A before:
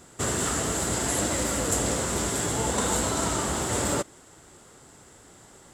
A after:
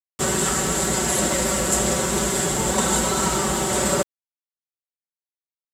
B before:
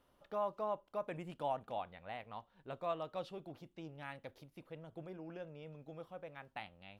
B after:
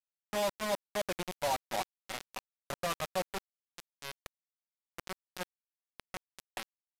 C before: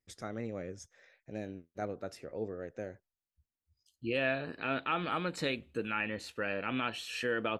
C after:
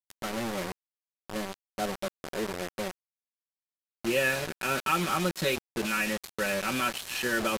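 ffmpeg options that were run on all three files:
-af "aecho=1:1:5.3:0.85,acrusher=bits=5:mix=0:aa=0.000001,aresample=32000,aresample=44100,volume=3dB"

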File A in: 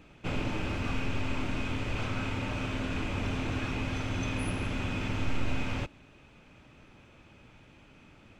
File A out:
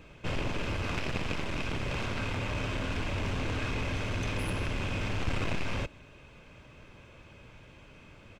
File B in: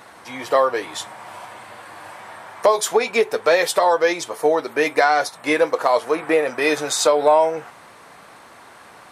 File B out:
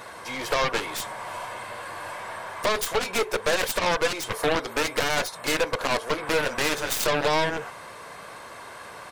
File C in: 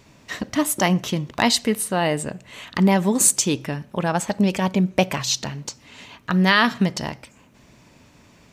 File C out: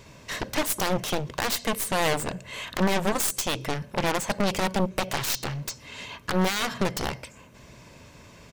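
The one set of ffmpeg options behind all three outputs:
-af "aecho=1:1:1.9:0.35,alimiter=limit=-13dB:level=0:latency=1:release=195,aeval=exprs='0.224*(cos(1*acos(clip(val(0)/0.224,-1,1)))-cos(1*PI/2))+0.0501*(cos(3*acos(clip(val(0)/0.224,-1,1)))-cos(3*PI/2))+0.0282*(cos(4*acos(clip(val(0)/0.224,-1,1)))-cos(4*PI/2))+0.0631*(cos(7*acos(clip(val(0)/0.224,-1,1)))-cos(7*PI/2))':c=same,volume=-1.5dB"

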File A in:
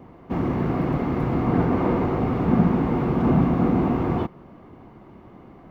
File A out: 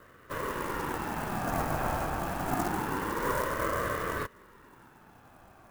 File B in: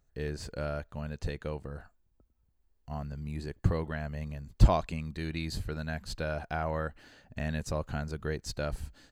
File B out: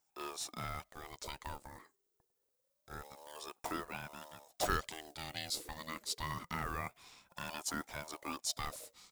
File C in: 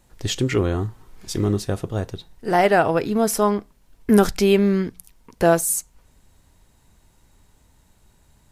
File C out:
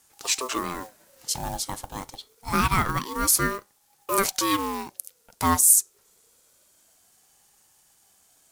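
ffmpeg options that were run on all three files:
-af "acrusher=bits=8:mode=log:mix=0:aa=0.000001,bass=f=250:g=-15,treble=f=4k:g=12,aeval=exprs='val(0)*sin(2*PI*610*n/s+610*0.35/0.26*sin(2*PI*0.26*n/s))':c=same,volume=-2dB"

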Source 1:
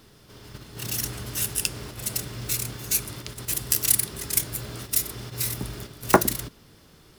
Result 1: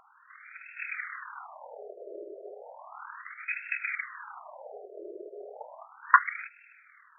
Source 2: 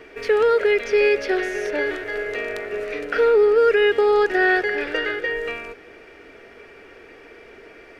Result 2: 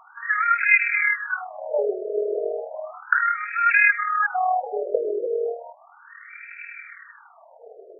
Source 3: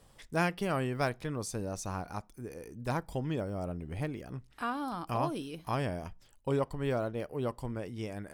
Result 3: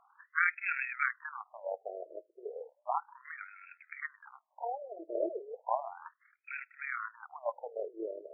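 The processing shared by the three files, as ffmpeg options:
-af "lowpass=f=2.9k:t=q:w=4.6,tremolo=f=39:d=0.519,afftfilt=real='re*between(b*sr/1024,470*pow(1900/470,0.5+0.5*sin(2*PI*0.34*pts/sr))/1.41,470*pow(1900/470,0.5+0.5*sin(2*PI*0.34*pts/sr))*1.41)':imag='im*between(b*sr/1024,470*pow(1900/470,0.5+0.5*sin(2*PI*0.34*pts/sr))/1.41,470*pow(1900/470,0.5+0.5*sin(2*PI*0.34*pts/sr))*1.41)':win_size=1024:overlap=0.75,volume=6.5dB"

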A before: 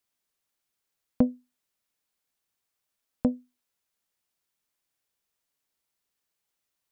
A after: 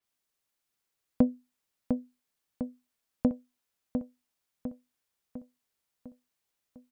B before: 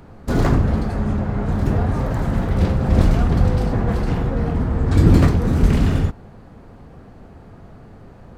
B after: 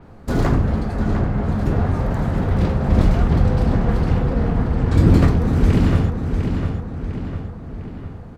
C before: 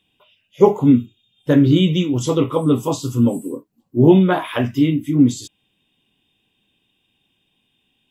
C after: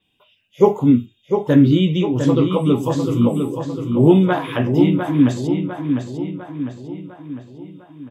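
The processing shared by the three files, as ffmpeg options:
-filter_complex "[0:a]acrossover=split=3100[a][b];[b]alimiter=level_in=3dB:limit=-24dB:level=0:latency=1:release=403,volume=-3dB[c];[a][c]amix=inputs=2:normalize=0,asplit=2[d][e];[e]adelay=702,lowpass=f=4.6k:p=1,volume=-6dB,asplit=2[f][g];[g]adelay=702,lowpass=f=4.6k:p=1,volume=0.53,asplit=2[h][i];[i]adelay=702,lowpass=f=4.6k:p=1,volume=0.53,asplit=2[j][k];[k]adelay=702,lowpass=f=4.6k:p=1,volume=0.53,asplit=2[l][m];[m]adelay=702,lowpass=f=4.6k:p=1,volume=0.53,asplit=2[n][o];[o]adelay=702,lowpass=f=4.6k:p=1,volume=0.53,asplit=2[p][q];[q]adelay=702,lowpass=f=4.6k:p=1,volume=0.53[r];[d][f][h][j][l][n][p][r]amix=inputs=8:normalize=0,adynamicequalizer=threshold=0.00708:dfrequency=5600:dqfactor=0.7:tfrequency=5600:tqfactor=0.7:attack=5:release=100:ratio=0.375:range=2:mode=cutabove:tftype=highshelf,volume=-1dB"

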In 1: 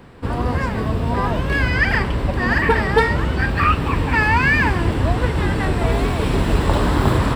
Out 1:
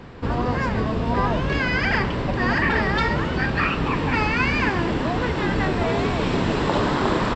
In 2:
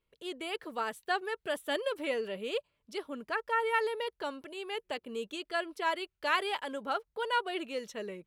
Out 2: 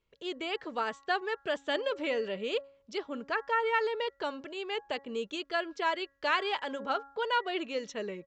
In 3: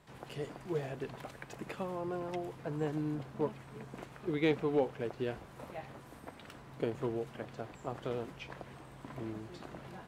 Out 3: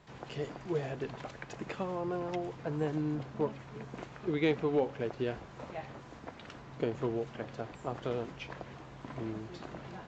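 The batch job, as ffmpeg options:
-filter_complex "[0:a]apsyclip=7dB,afftfilt=real='re*lt(hypot(re,im),2)':imag='im*lt(hypot(re,im),2)':win_size=1024:overlap=0.75,asplit=2[a][b];[b]acompressor=threshold=-24dB:ratio=6,volume=-2.5dB[c];[a][c]amix=inputs=2:normalize=0,bandreject=f=276.6:t=h:w=4,bandreject=f=553.2:t=h:w=4,bandreject=f=829.8:t=h:w=4,bandreject=f=1.1064k:t=h:w=4,bandreject=f=1.383k:t=h:w=4,bandreject=f=1.6596k:t=h:w=4,bandreject=f=1.9362k:t=h:w=4,aresample=16000,aresample=44100,volume=-9dB"

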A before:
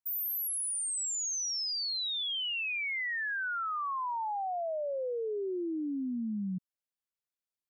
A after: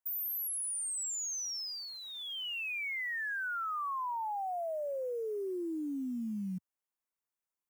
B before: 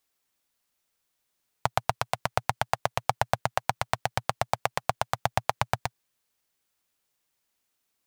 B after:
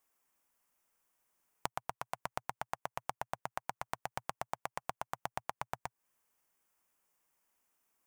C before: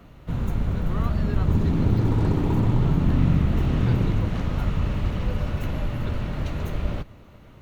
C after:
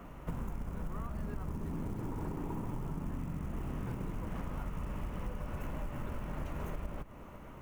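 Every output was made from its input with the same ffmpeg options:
-af "acrusher=bits=7:mode=log:mix=0:aa=0.000001,equalizer=f=100:t=o:w=0.67:g=-9,equalizer=f=1k:t=o:w=0.67:g=5,equalizer=f=4k:t=o:w=0.67:g=-12,acompressor=threshold=-34dB:ratio=16"

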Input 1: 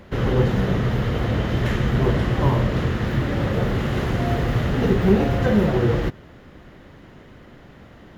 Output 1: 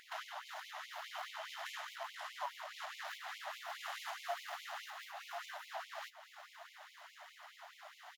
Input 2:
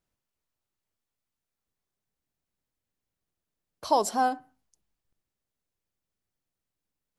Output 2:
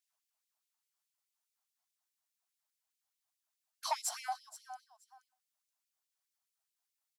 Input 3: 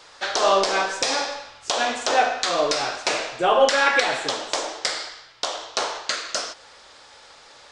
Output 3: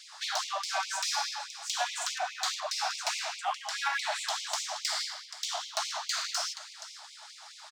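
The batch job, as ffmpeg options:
-filter_complex "[0:a]aeval=exprs='if(lt(val(0),0),0.708*val(0),val(0))':c=same,equalizer=f=2.1k:w=0.49:g=-13,acompressor=threshold=-30dB:ratio=10,asplit=2[a][b];[b]aecho=0:1:476|952:0.141|0.024[c];[a][c]amix=inputs=2:normalize=0,asplit=2[d][e];[e]highpass=f=720:p=1,volume=20dB,asoftclip=type=tanh:threshold=-13dB[f];[d][f]amix=inputs=2:normalize=0,lowpass=f=4.9k:p=1,volume=-6dB,afftfilt=real='re*gte(b*sr/1024,590*pow(2100/590,0.5+0.5*sin(2*PI*4.8*pts/sr)))':imag='im*gte(b*sr/1024,590*pow(2100/590,0.5+0.5*sin(2*PI*4.8*pts/sr)))':win_size=1024:overlap=0.75,volume=-3dB"

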